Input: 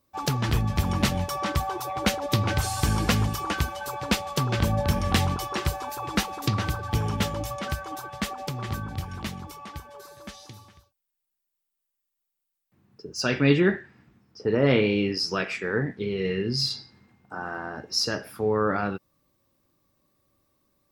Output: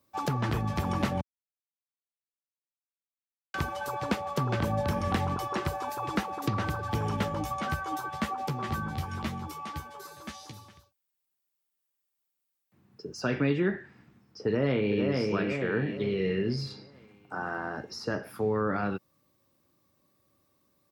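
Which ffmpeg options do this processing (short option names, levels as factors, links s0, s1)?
-filter_complex "[0:a]asettb=1/sr,asplit=3[s0][s1][s2];[s0]atrim=end=7.354[s3];[s1]atrim=start=7.35:end=10.52,asetpts=PTS-STARTPTS,afade=t=in:d=0.004:c=qsin,afade=t=out:st=3.166:d=0.004:c=qsin,asplit=2[s4][s5];[s5]adelay=13,volume=0.596[s6];[s4][s6]amix=inputs=2:normalize=0,atrim=end_sample=139797[s7];[s2]atrim=start=10.516[s8];[s3][s7]acrossfade=d=0.004:c1=hsin:c2=qsin[s9];[s9][s8]acrossfade=d=0.004:c1=qsin:c2=hsin,asplit=2[s10][s11];[s11]afade=t=in:st=14.43:d=0.01,afade=t=out:st=15.07:d=0.01,aecho=0:1:450|900|1350|1800|2250:0.562341|0.224937|0.0899746|0.0359898|0.0143959[s12];[s10][s12]amix=inputs=2:normalize=0,asplit=3[s13][s14][s15];[s13]atrim=end=1.21,asetpts=PTS-STARTPTS,afade=t=out:st=1.206:d=0.004:c=hsin[s16];[s14]atrim=start=1.21:end=3.54,asetpts=PTS-STARTPTS,volume=0[s17];[s15]atrim=start=3.54,asetpts=PTS-STARTPTS,afade=t=in:d=0.004:c=hsin[s18];[s16][s17][s18]concat=n=3:v=0:a=1,highpass=81,acrossover=split=270|2000[s19][s20][s21];[s19]acompressor=threshold=0.0355:ratio=4[s22];[s20]acompressor=threshold=0.0398:ratio=4[s23];[s21]acompressor=threshold=0.00562:ratio=4[s24];[s22][s23][s24]amix=inputs=3:normalize=0"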